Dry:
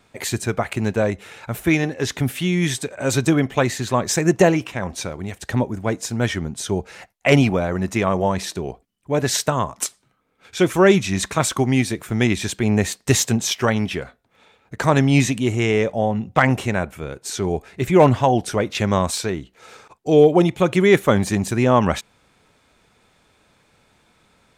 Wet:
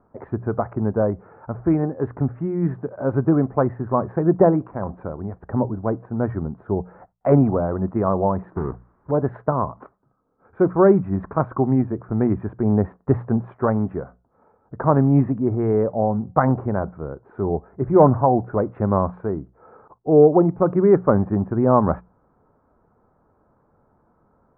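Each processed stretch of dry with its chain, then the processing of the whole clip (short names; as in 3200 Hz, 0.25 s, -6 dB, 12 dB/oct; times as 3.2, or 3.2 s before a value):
8.52–9.11 half-waves squared off + requantised 8-bit, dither triangular + bell 670 Hz -7 dB 1 oct
whole clip: Wiener smoothing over 9 samples; steep low-pass 1300 Hz 36 dB/oct; notches 60/120/180 Hz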